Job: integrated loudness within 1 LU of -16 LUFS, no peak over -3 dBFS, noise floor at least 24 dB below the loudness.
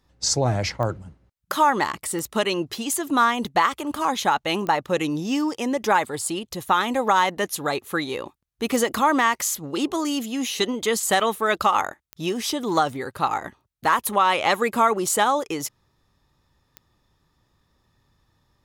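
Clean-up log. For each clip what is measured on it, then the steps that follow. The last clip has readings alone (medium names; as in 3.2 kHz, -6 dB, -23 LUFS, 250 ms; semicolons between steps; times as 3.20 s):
clicks found 6; loudness -23.0 LUFS; peak level -7.5 dBFS; loudness target -16.0 LUFS
-> de-click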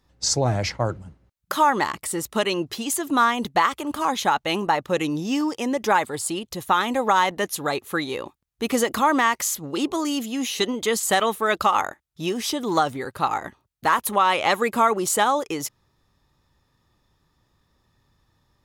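clicks found 0; loudness -23.0 LUFS; peak level -7.5 dBFS; loudness target -16.0 LUFS
-> trim +7 dB; peak limiter -3 dBFS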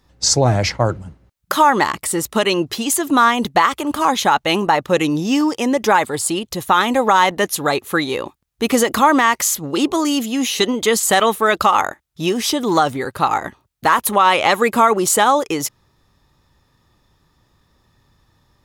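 loudness -16.5 LUFS; peak level -3.0 dBFS; noise floor -63 dBFS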